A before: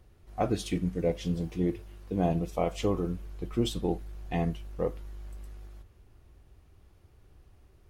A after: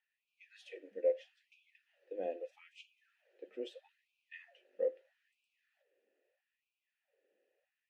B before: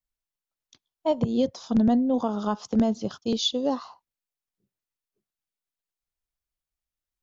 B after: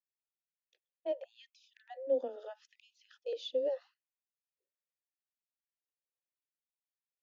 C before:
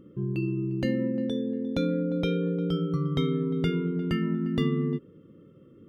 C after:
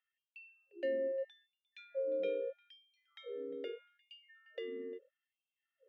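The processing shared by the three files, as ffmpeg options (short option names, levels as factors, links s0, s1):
-filter_complex "[0:a]afreqshift=14,asplit=3[s0][s1][s2];[s0]bandpass=f=530:t=q:w=8,volume=1[s3];[s1]bandpass=f=1840:t=q:w=8,volume=0.501[s4];[s2]bandpass=f=2480:t=q:w=8,volume=0.355[s5];[s3][s4][s5]amix=inputs=3:normalize=0,afftfilt=real='re*gte(b*sr/1024,210*pow(2300/210,0.5+0.5*sin(2*PI*0.78*pts/sr)))':imag='im*gte(b*sr/1024,210*pow(2300/210,0.5+0.5*sin(2*PI*0.78*pts/sr)))':win_size=1024:overlap=0.75"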